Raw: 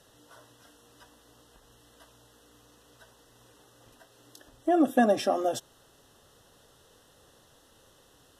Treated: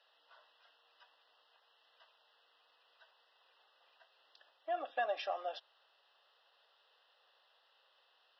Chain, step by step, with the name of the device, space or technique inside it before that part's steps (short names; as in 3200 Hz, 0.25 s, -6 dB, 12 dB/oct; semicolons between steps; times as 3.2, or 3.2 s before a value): musical greeting card (downsampling 11025 Hz; HPF 640 Hz 24 dB/oct; bell 2600 Hz +6 dB 0.43 oct); gain -8.5 dB